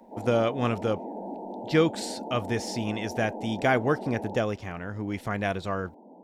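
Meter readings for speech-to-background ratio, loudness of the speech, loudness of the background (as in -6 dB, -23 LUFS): 9.5 dB, -28.5 LUFS, -38.0 LUFS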